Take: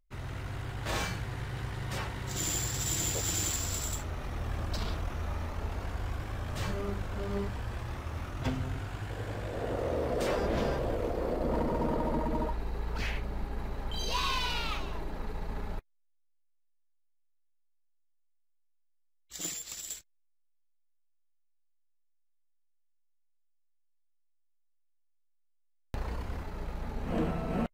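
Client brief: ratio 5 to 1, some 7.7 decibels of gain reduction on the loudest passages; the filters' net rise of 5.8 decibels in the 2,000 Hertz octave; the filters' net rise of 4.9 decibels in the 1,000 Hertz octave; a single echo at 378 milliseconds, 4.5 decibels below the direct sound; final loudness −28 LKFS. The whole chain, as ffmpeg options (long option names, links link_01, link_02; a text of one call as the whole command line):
ffmpeg -i in.wav -af "equalizer=frequency=1000:width_type=o:gain=4.5,equalizer=frequency=2000:width_type=o:gain=6,acompressor=threshold=-33dB:ratio=5,aecho=1:1:378:0.596,volume=8.5dB" out.wav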